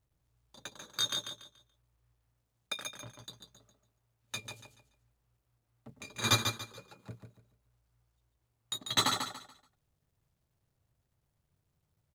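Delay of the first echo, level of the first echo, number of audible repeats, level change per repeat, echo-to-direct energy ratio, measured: 0.143 s, -6.5 dB, 3, -10.5 dB, -6.0 dB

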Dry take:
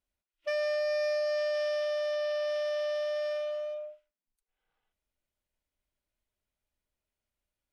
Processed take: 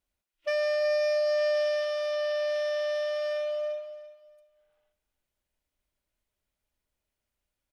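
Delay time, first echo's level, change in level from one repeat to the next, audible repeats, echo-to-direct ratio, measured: 0.342 s, -15.0 dB, -12.5 dB, 2, -14.5 dB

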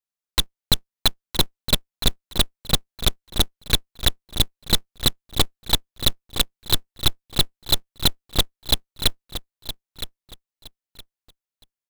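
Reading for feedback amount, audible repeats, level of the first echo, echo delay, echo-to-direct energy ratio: 24%, 2, -12.0 dB, 0.966 s, -11.5 dB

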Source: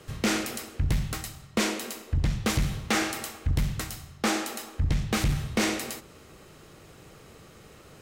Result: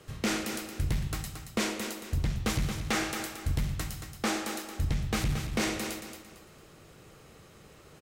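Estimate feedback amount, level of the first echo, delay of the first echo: 32%, -8.0 dB, 0.226 s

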